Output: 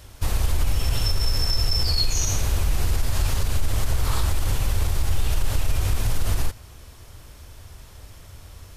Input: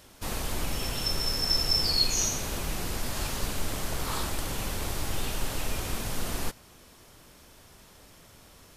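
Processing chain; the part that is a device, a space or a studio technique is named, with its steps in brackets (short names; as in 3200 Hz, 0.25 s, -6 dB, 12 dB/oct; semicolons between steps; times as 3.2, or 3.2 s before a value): car stereo with a boomy subwoofer (resonant low shelf 130 Hz +11 dB, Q 1.5; limiter -16.5 dBFS, peak gain reduction 8.5 dB); gain +4 dB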